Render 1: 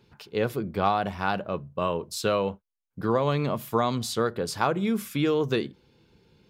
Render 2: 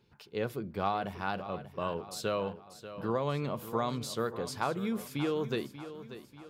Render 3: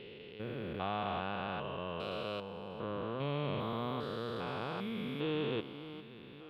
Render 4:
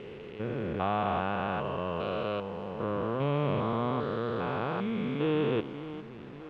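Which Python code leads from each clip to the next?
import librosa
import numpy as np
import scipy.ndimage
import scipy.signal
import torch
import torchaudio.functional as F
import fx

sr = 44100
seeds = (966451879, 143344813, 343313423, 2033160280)

y1 = fx.echo_feedback(x, sr, ms=588, feedback_pct=47, wet_db=-13.0)
y1 = y1 * 10.0 ** (-7.5 / 20.0)
y2 = fx.spec_steps(y1, sr, hold_ms=400)
y2 = fx.high_shelf_res(y2, sr, hz=4600.0, db=-13.5, q=3.0)
y2 = y2 * 10.0 ** (-1.0 / 20.0)
y3 = fx.delta_hold(y2, sr, step_db=-52.5)
y3 = scipy.signal.sosfilt(scipy.signal.butter(2, 2300.0, 'lowpass', fs=sr, output='sos'), y3)
y3 = y3 * 10.0 ** (7.5 / 20.0)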